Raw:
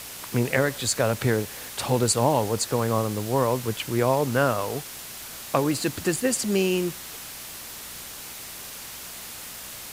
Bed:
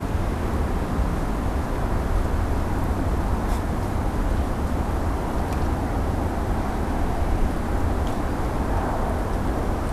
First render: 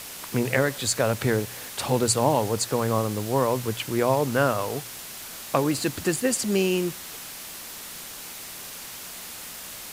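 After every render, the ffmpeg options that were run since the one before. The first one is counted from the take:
-af "bandreject=f=60:t=h:w=4,bandreject=f=120:t=h:w=4"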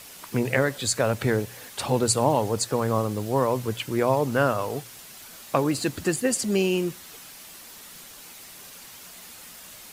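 -af "afftdn=nr=7:nf=-39"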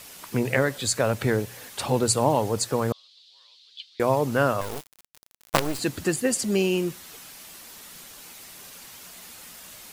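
-filter_complex "[0:a]asettb=1/sr,asplit=3[a][b][c];[a]atrim=end=2.924[d];[b]atrim=start=2.92:end=4,asetpts=PTS-STARTPTS,afade=t=in:d=0.004:c=qsin,afade=t=out:st=1.076:d=0.004:c=qsin,asuperpass=centerf=3900:order=4:qfactor=3[e];[c]atrim=start=3.996[f];[d][e]acrossfade=d=0.004:c1=hsin:c2=qsin[g];[g][f]acrossfade=d=0.004:c1=qsin:c2=hsin,asettb=1/sr,asplit=3[h][i][j];[h]atrim=end=4.614[k];[i]atrim=start=4.61:end=5.79,asetpts=PTS-STARTPTS,afade=t=in:d=0.004:c=qsin,afade=t=out:st=1.176:d=0.004:c=qsin,acrusher=bits=3:dc=4:mix=0:aa=0.000001[l];[j]atrim=start=5.786[m];[k][l]acrossfade=d=0.004:c1=hsin:c2=qsin[n];[n][m]acrossfade=d=0.004:c1=qsin:c2=hsin"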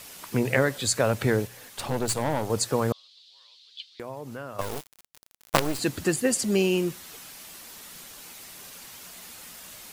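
-filter_complex "[0:a]asettb=1/sr,asplit=3[a][b][c];[a]atrim=end=1.474[d];[b]atrim=start=1.47:end=2.5,asetpts=PTS-STARTPTS,afade=t=in:d=0.004:c=qsin,afade=t=out:st=1.026:d=0.004:c=qsin,aeval=exprs='(tanh(11.2*val(0)+0.7)-tanh(0.7))/11.2':c=same[e];[c]atrim=start=2.496[f];[d][e]acrossfade=d=0.004:c1=hsin:c2=qsin[g];[g][f]acrossfade=d=0.004:c1=qsin:c2=hsin,asettb=1/sr,asplit=3[h][i][j];[h]atrim=end=3.924[k];[i]atrim=start=3.92:end=4.59,asetpts=PTS-STARTPTS,afade=t=in:d=0.004:c=qsin,afade=t=out:st=0.666:d=0.004:c=qsin,acompressor=threshold=-41dB:ratio=2.5:attack=3.2:release=140:knee=1:detection=peak[l];[j]atrim=start=4.586[m];[k][l]acrossfade=d=0.004:c1=hsin:c2=qsin[n];[n][m]acrossfade=d=0.004:c1=qsin:c2=hsin"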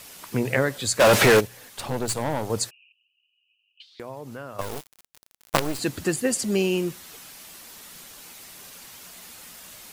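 -filter_complex "[0:a]asplit=3[a][b][c];[a]afade=t=out:st=0.99:d=0.02[d];[b]asplit=2[e][f];[f]highpass=f=720:p=1,volume=33dB,asoftclip=type=tanh:threshold=-8dB[g];[e][g]amix=inputs=2:normalize=0,lowpass=f=5.8k:p=1,volume=-6dB,afade=t=in:st=0.99:d=0.02,afade=t=out:st=1.39:d=0.02[h];[c]afade=t=in:st=1.39:d=0.02[i];[d][h][i]amix=inputs=3:normalize=0,asplit=3[j][k][l];[j]afade=t=out:st=2.69:d=0.02[m];[k]asuperpass=centerf=2700:order=12:qfactor=5.3,afade=t=in:st=2.69:d=0.02,afade=t=out:st=3.8:d=0.02[n];[l]afade=t=in:st=3.8:d=0.02[o];[m][n][o]amix=inputs=3:normalize=0"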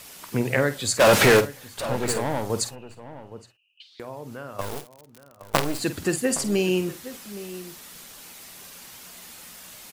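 -filter_complex "[0:a]asplit=2[a][b];[b]adelay=49,volume=-12dB[c];[a][c]amix=inputs=2:normalize=0,asplit=2[d][e];[e]adelay=816.3,volume=-14dB,highshelf=f=4k:g=-18.4[f];[d][f]amix=inputs=2:normalize=0"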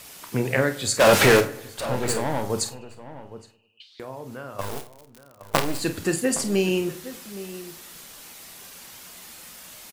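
-filter_complex "[0:a]asplit=2[a][b];[b]adelay=31,volume=-11dB[c];[a][c]amix=inputs=2:normalize=0,asplit=2[d][e];[e]adelay=101,lowpass=f=2.5k:p=1,volume=-19.5dB,asplit=2[f][g];[g]adelay=101,lowpass=f=2.5k:p=1,volume=0.54,asplit=2[h][i];[i]adelay=101,lowpass=f=2.5k:p=1,volume=0.54,asplit=2[j][k];[k]adelay=101,lowpass=f=2.5k:p=1,volume=0.54[l];[d][f][h][j][l]amix=inputs=5:normalize=0"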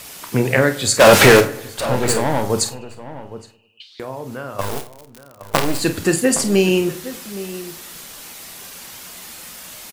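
-af "volume=7dB,alimiter=limit=-1dB:level=0:latency=1"

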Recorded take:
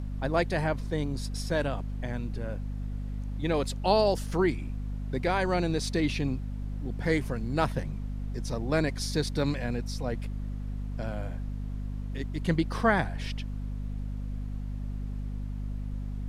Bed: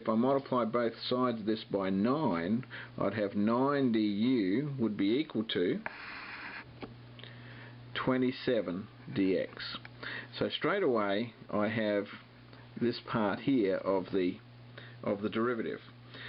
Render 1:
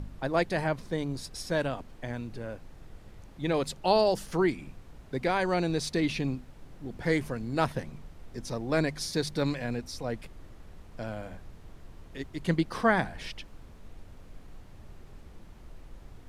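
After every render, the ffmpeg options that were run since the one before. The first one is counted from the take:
-af "bandreject=f=50:t=h:w=4,bandreject=f=100:t=h:w=4,bandreject=f=150:t=h:w=4,bandreject=f=200:t=h:w=4,bandreject=f=250:t=h:w=4"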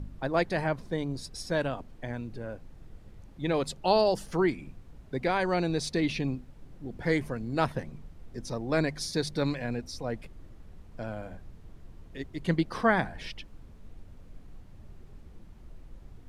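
-af "afftdn=nr=6:nf=-50"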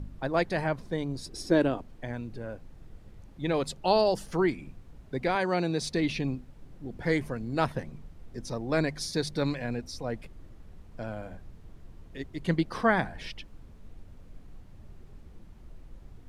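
-filter_complex "[0:a]asettb=1/sr,asplit=3[a][b][c];[a]atrim=end=1.264[d];[b]atrim=start=1.26:end=1.78,asetpts=PTS-STARTPTS,afade=t=in:d=0.004:c=qsin,afade=t=out:st=0.516:d=0.004:c=qsin,equalizer=f=340:t=o:w=0.77:g=14[e];[c]atrim=start=1.776[f];[d][e]acrossfade=d=0.004:c1=hsin:c2=qsin[g];[g][f]acrossfade=d=0.004:c1=qsin:c2=hsin,asettb=1/sr,asplit=3[h][i][j];[h]atrim=end=5.354[k];[i]atrim=start=5.35:end=5.82,asetpts=PTS-STARTPTS,afade=t=in:d=0.004:c=qsin,afade=t=out:st=0.466:d=0.004:c=qsin,highpass=f=120:w=0.5412,highpass=f=120:w=1.3066[l];[j]atrim=start=5.816[m];[k][l]acrossfade=d=0.004:c1=hsin:c2=qsin[n];[n][m]acrossfade=d=0.004:c1=qsin:c2=hsin"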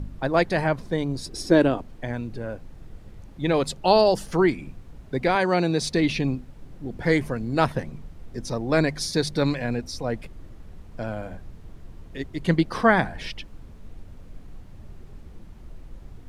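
-af "volume=6dB"

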